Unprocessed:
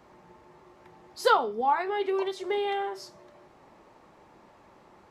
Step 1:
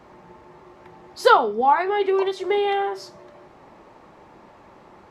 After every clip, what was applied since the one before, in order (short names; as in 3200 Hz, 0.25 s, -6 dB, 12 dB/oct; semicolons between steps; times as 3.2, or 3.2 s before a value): high shelf 5400 Hz -7 dB; gain +7.5 dB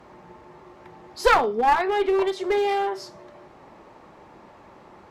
one-sided clip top -18 dBFS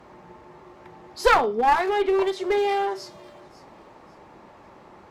thin delay 0.547 s, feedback 32%, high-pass 4400 Hz, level -15 dB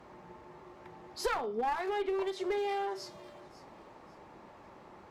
compressor 4:1, threshold -26 dBFS, peak gain reduction 12 dB; gain -5 dB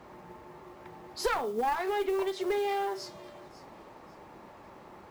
modulation noise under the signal 26 dB; gain +3 dB